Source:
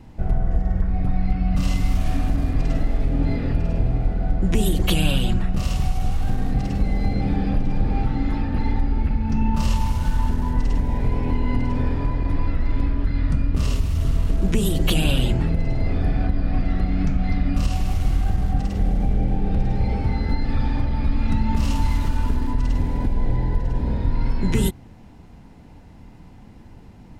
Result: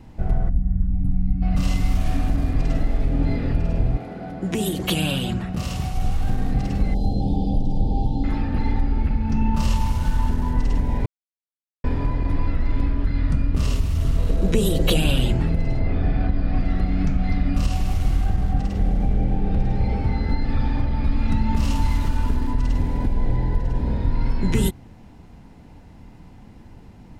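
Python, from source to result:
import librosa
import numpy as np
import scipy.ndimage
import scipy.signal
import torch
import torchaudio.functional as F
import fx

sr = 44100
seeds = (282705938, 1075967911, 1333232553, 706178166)

y = fx.spec_box(x, sr, start_s=0.49, length_s=0.93, low_hz=300.0, high_hz=10000.0, gain_db=-19)
y = fx.highpass(y, sr, hz=fx.line((3.96, 240.0), (5.92, 65.0)), slope=12, at=(3.96, 5.92), fade=0.02)
y = fx.ellip_bandstop(y, sr, low_hz=850.0, high_hz=3300.0, order=3, stop_db=50, at=(6.94, 8.24))
y = fx.small_body(y, sr, hz=(500.0, 3900.0), ring_ms=30, db=11, at=(14.18, 14.97))
y = fx.lowpass(y, sr, hz=fx.line((15.79, 3100.0), (16.54, 6800.0)), slope=12, at=(15.79, 16.54), fade=0.02)
y = fx.high_shelf(y, sr, hz=6000.0, db=-4.5, at=(18.26, 21.04))
y = fx.edit(y, sr, fx.silence(start_s=11.06, length_s=0.78), tone=tone)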